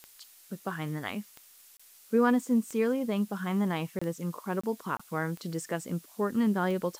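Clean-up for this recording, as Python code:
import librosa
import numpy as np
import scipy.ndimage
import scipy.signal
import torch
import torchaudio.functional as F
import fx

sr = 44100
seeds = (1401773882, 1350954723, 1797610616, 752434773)

y = fx.fix_declick_ar(x, sr, threshold=10.0)
y = fx.fix_interpolate(y, sr, at_s=(1.77, 3.99, 4.61, 4.97), length_ms=25.0)
y = fx.noise_reduce(y, sr, print_start_s=1.27, print_end_s=1.77, reduce_db=18.0)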